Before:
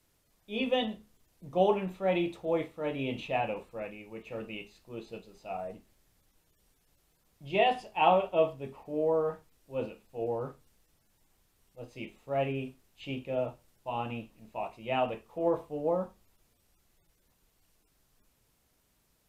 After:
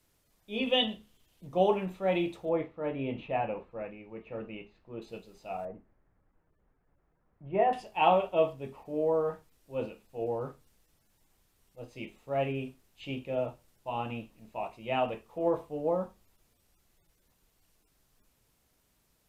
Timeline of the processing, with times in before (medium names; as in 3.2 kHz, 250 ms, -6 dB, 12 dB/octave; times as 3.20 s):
0.67–1.47 s: peaking EQ 3.1 kHz +10.5 dB 0.55 oct
2.49–5.02 s: low-pass 2 kHz
5.65–7.73 s: low-pass 1.7 kHz 24 dB/octave